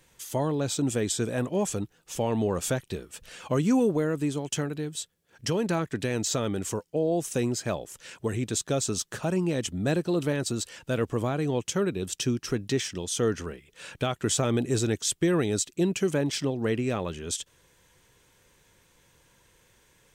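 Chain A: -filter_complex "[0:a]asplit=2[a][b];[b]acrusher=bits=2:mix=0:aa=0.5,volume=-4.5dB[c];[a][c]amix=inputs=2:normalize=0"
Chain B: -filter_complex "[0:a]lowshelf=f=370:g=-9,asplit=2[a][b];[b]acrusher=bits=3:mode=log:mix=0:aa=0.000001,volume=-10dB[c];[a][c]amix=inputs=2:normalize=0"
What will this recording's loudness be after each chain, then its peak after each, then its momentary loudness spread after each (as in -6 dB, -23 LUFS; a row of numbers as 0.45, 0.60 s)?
-27.5, -29.5 LUFS; -9.5, -13.0 dBFS; 10, 9 LU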